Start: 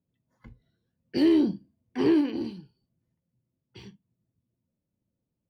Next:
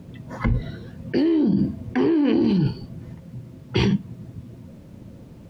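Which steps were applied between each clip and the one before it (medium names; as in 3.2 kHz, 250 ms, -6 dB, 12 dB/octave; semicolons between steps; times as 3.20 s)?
low-pass 2.1 kHz 6 dB/octave; level flattener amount 100%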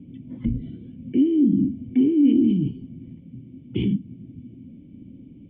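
dynamic bell 1.3 kHz, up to -7 dB, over -43 dBFS, Q 0.91; cascade formant filter i; trim +6 dB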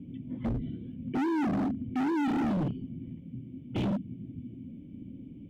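hard clipper -26 dBFS, distortion -5 dB; trim -1 dB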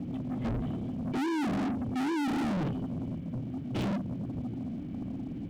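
waveshaping leveller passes 3; trim -2 dB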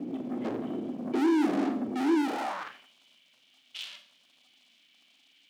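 Schroeder reverb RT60 0.49 s, combs from 29 ms, DRR 7.5 dB; high-pass sweep 340 Hz -> 3.2 kHz, 2.22–2.93 s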